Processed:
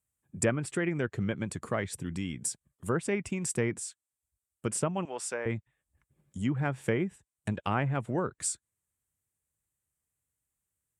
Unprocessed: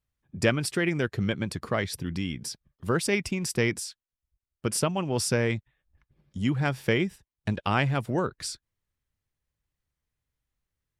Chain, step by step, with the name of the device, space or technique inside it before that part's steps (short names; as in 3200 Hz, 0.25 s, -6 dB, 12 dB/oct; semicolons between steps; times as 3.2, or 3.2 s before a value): treble ducked by the level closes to 1800 Hz, closed at -20.5 dBFS; budget condenser microphone (HPF 71 Hz; resonant high shelf 6300 Hz +9 dB, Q 3); 5.05–5.46 HPF 590 Hz 12 dB/oct; gain -3.5 dB